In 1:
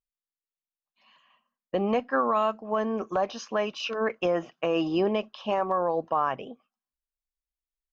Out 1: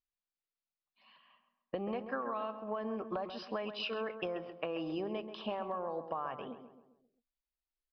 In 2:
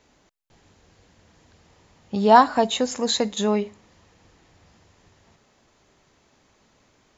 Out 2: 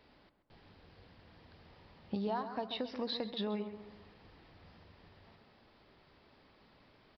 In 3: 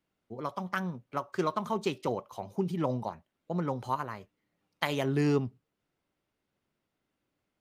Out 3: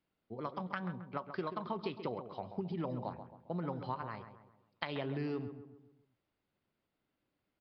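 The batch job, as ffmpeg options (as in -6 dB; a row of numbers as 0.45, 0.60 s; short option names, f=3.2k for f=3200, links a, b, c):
-filter_complex "[0:a]acompressor=threshold=-31dB:ratio=12,asplit=2[a][b];[b]adelay=134,lowpass=f=1.7k:p=1,volume=-9dB,asplit=2[c][d];[d]adelay=134,lowpass=f=1.7k:p=1,volume=0.47,asplit=2[e][f];[f]adelay=134,lowpass=f=1.7k:p=1,volume=0.47,asplit=2[g][h];[h]adelay=134,lowpass=f=1.7k:p=1,volume=0.47,asplit=2[i][j];[j]adelay=134,lowpass=f=1.7k:p=1,volume=0.47[k];[a][c][e][g][i][k]amix=inputs=6:normalize=0,aresample=11025,aresample=44100,volume=-3dB"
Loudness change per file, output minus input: -11.5, -18.5, -8.0 LU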